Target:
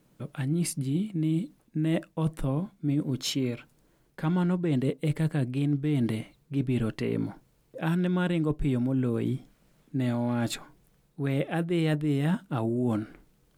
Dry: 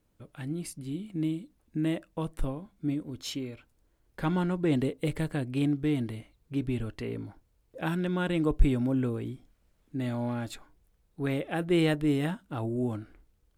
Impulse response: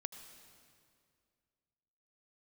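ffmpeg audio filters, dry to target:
-af "lowshelf=f=110:t=q:w=3:g=-8,areverse,acompressor=threshold=0.0224:ratio=6,areverse,volume=2.82"

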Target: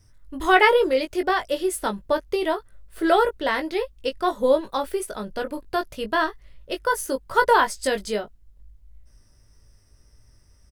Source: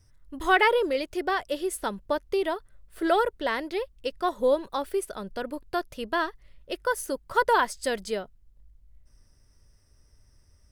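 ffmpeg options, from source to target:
-filter_complex "[0:a]asplit=2[s0][s1];[s1]adelay=19,volume=0.501[s2];[s0][s2]amix=inputs=2:normalize=0,volume=1.5"

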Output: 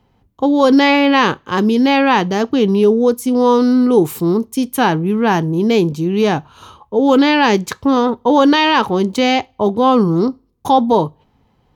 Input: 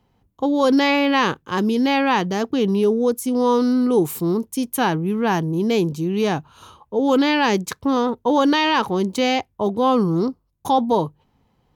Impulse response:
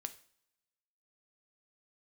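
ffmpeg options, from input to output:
-filter_complex "[0:a]asplit=2[s0][s1];[1:a]atrim=start_sample=2205,asetrate=88200,aresample=44100,lowpass=6700[s2];[s1][s2]afir=irnorm=-1:irlink=0,volume=1.68[s3];[s0][s3]amix=inputs=2:normalize=0,volume=1.19"

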